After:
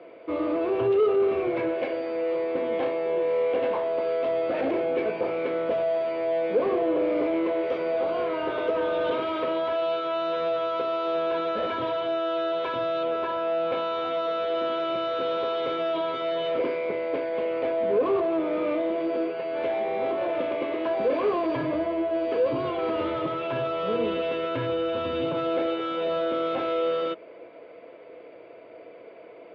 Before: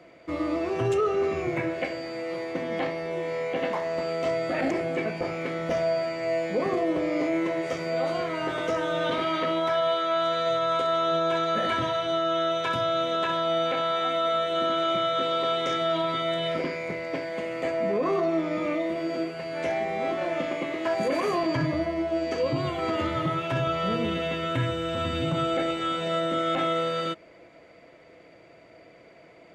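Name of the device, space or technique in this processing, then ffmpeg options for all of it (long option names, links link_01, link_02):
overdrive pedal into a guitar cabinet: -filter_complex "[0:a]asettb=1/sr,asplit=3[link_01][link_02][link_03];[link_01]atrim=end=13.034[link_04];[link_02]atrim=start=13.03:end=13.72,asetpts=PTS-STARTPTS,afade=type=in:duration=0.004:curve=qsin,afade=type=out:start_time=0.686:duration=0.004:curve=qsin,lowpass=2300[link_05];[link_03]atrim=start=13.716[link_06];[link_04][link_05]acrossfade=duration=0.004:curve1=hsin:curve2=qsin[link_07];[link_07][link_06]acrossfade=duration=0.004:curve1=qsin:curve2=hsin,asplit=2[link_08][link_09];[link_09]highpass=frequency=720:poles=1,volume=18dB,asoftclip=type=tanh:threshold=-15dB[link_10];[link_08][link_10]amix=inputs=2:normalize=0,lowpass=frequency=1200:poles=1,volume=-6dB,highpass=86,equalizer=frequency=160:width_type=q:width=4:gain=-9,equalizer=frequency=450:width_type=q:width=4:gain=7,equalizer=frequency=770:width_type=q:width=4:gain=-4,equalizer=frequency=1300:width_type=q:width=4:gain=-4,equalizer=frequency=1900:width_type=q:width=4:gain=-9,lowpass=frequency=3700:width=0.5412,lowpass=frequency=3700:width=1.3066,volume=-2dB"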